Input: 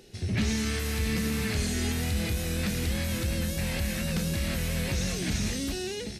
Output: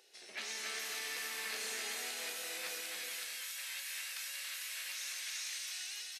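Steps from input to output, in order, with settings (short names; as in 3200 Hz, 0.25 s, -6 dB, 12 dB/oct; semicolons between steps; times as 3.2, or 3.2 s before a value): Bessel high-pass 750 Hz, order 4, from 2.8 s 1700 Hz; bouncing-ball echo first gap 0.28 s, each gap 0.6×, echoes 5; gain -7 dB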